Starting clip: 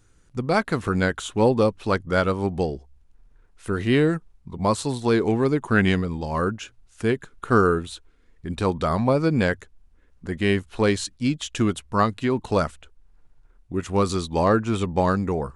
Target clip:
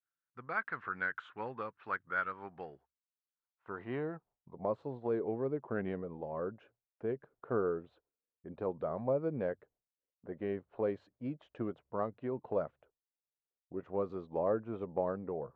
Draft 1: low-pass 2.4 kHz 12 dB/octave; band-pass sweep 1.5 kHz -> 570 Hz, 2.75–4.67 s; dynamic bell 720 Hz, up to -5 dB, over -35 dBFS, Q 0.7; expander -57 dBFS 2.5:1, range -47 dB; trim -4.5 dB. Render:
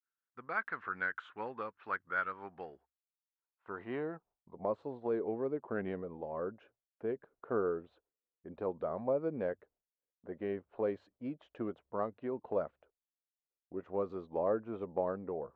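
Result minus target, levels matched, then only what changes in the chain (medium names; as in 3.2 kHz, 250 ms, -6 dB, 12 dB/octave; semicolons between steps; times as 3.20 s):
125 Hz band -4.5 dB
add after low-pass: peaking EQ 130 Hz +8 dB 0.66 oct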